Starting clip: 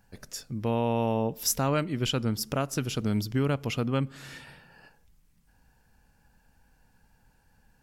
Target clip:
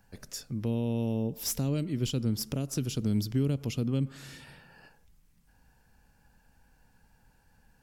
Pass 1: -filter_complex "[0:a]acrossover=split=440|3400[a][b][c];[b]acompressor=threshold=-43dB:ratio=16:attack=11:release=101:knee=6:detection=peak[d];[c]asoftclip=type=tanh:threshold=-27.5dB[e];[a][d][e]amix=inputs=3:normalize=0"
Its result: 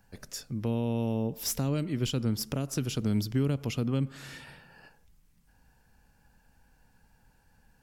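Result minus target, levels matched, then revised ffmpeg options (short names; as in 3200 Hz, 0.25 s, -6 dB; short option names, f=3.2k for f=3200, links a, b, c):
compressor: peak gain reduction -8.5 dB
-filter_complex "[0:a]acrossover=split=440|3400[a][b][c];[b]acompressor=threshold=-52dB:ratio=16:attack=11:release=101:knee=6:detection=peak[d];[c]asoftclip=type=tanh:threshold=-27.5dB[e];[a][d][e]amix=inputs=3:normalize=0"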